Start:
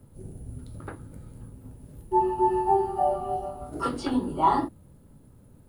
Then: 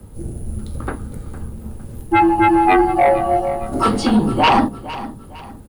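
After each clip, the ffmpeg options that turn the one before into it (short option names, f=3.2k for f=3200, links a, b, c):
-af "aeval=exprs='0.376*sin(PI/2*3.16*val(0)/0.376)':c=same,afreqshift=-37,aecho=1:1:458|916|1374:0.168|0.0604|0.0218"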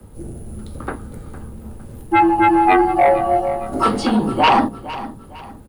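-filter_complex "[0:a]equalizer=f=1k:w=0.31:g=3.5,acrossover=split=160|930|3200[a][b][c][d];[a]volume=27.5dB,asoftclip=hard,volume=-27.5dB[e];[e][b][c][d]amix=inputs=4:normalize=0,volume=-3dB"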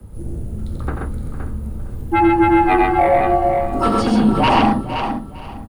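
-filter_complex "[0:a]lowshelf=f=170:g=10.5,asplit=2[a][b];[b]aecho=0:1:89|130|518:0.531|0.708|0.422[c];[a][c]amix=inputs=2:normalize=0,volume=-3.5dB"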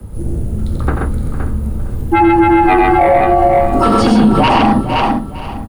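-af "alimiter=level_in=9dB:limit=-1dB:release=50:level=0:latency=1,volume=-1dB"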